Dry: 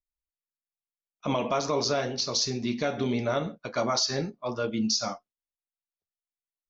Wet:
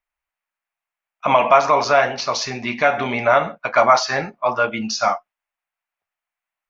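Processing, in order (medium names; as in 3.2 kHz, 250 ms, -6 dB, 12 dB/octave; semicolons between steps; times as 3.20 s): high-order bell 1.3 kHz +16 dB 2.5 oct; trim +1 dB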